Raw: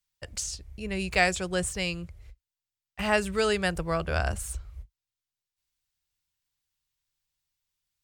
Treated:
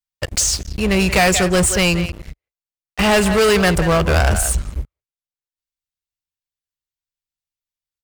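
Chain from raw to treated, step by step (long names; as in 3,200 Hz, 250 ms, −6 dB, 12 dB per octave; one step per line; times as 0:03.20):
far-end echo of a speakerphone 180 ms, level −14 dB
leveller curve on the samples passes 5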